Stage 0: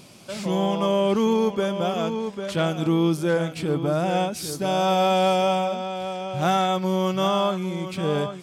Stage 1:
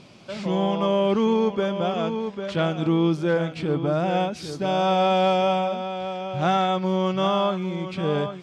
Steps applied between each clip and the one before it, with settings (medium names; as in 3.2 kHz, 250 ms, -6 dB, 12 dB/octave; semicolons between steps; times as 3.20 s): low-pass 4.3 kHz 12 dB/octave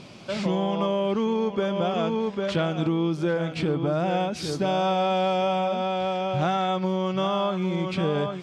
compression, threshold -25 dBFS, peak gain reduction 8.5 dB; trim +4 dB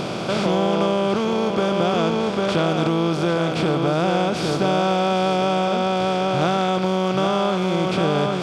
spectral levelling over time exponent 0.4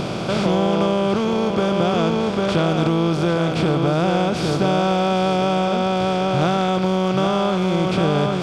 bass shelf 110 Hz +10.5 dB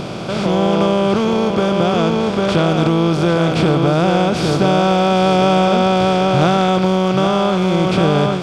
level rider; trim -1 dB